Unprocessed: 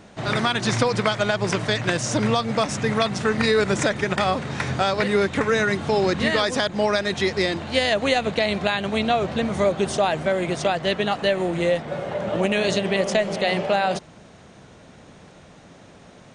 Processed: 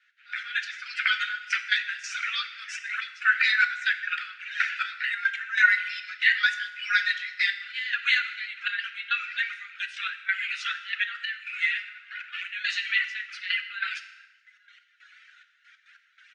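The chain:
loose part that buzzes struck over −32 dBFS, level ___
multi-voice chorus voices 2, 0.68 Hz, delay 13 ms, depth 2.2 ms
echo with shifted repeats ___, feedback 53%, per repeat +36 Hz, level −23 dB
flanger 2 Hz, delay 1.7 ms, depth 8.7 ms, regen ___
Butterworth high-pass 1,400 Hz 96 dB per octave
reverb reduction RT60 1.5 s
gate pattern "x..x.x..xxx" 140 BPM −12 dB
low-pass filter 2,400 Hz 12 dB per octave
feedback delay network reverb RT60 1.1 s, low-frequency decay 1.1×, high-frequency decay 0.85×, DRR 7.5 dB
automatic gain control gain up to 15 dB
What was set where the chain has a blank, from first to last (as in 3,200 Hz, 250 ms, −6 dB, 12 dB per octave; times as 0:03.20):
−25 dBFS, 427 ms, −82%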